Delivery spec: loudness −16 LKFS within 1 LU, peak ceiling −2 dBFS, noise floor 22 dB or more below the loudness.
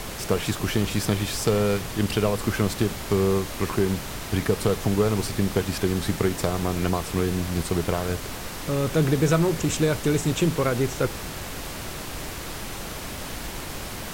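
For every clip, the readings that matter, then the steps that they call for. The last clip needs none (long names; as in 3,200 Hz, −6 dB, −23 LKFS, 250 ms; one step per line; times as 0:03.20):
background noise floor −35 dBFS; target noise floor −48 dBFS; integrated loudness −25.5 LKFS; sample peak −8.0 dBFS; target loudness −16.0 LKFS
→ noise reduction from a noise print 13 dB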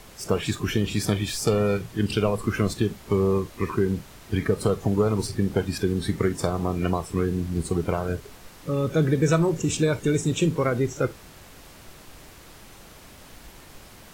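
background noise floor −48 dBFS; integrated loudness −25.0 LKFS; sample peak −8.5 dBFS; target loudness −16.0 LKFS
→ level +9 dB
brickwall limiter −2 dBFS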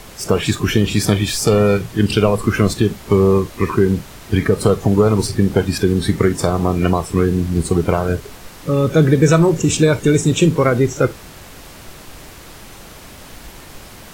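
integrated loudness −16.5 LKFS; sample peak −2.0 dBFS; background noise floor −39 dBFS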